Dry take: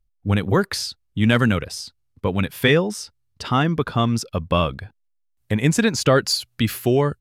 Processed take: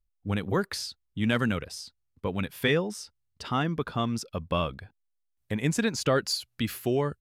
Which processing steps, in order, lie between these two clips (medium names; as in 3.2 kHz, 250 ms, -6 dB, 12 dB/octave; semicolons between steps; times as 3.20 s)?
peaking EQ 110 Hz -3.5 dB 0.6 oct; trim -8 dB